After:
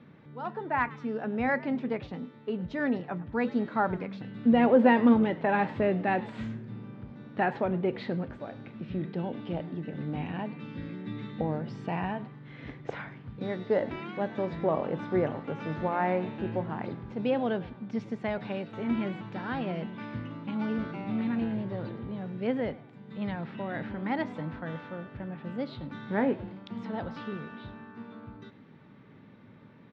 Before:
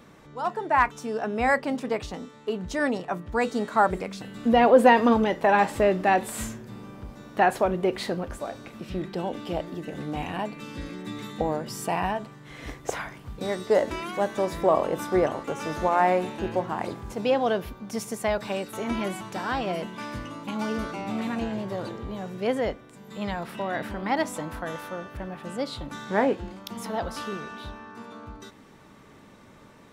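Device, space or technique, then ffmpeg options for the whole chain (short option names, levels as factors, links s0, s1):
frequency-shifting delay pedal into a guitar cabinet: -filter_complex "[0:a]asplit=4[s0][s1][s2][s3];[s1]adelay=104,afreqshift=100,volume=0.1[s4];[s2]adelay=208,afreqshift=200,volume=0.0351[s5];[s3]adelay=312,afreqshift=300,volume=0.0123[s6];[s0][s4][s5][s6]amix=inputs=4:normalize=0,highpass=87,equalizer=f=110:t=q:w=4:g=9,equalizer=f=160:t=q:w=4:g=8,equalizer=f=240:t=q:w=4:g=6,equalizer=f=690:t=q:w=4:g=-4,equalizer=f=1100:t=q:w=4:g=-5,equalizer=f=2900:t=q:w=4:g=-3,lowpass=f=3500:w=0.5412,lowpass=f=3500:w=1.3066,volume=0.562"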